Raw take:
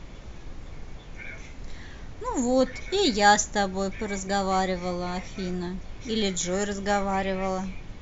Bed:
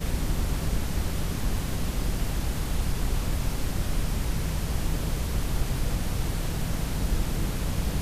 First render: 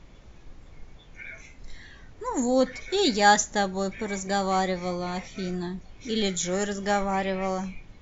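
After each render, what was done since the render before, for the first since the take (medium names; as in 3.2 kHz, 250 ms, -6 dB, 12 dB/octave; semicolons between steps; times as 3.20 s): noise print and reduce 8 dB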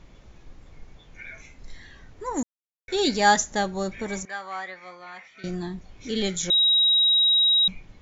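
2.43–2.88 s: mute; 4.25–5.44 s: band-pass filter 1.7 kHz, Q 1.8; 6.50–7.68 s: bleep 3.82 kHz -16 dBFS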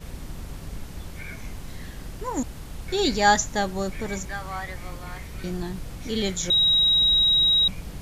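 add bed -9.5 dB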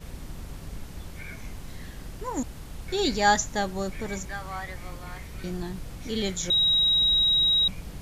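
trim -2.5 dB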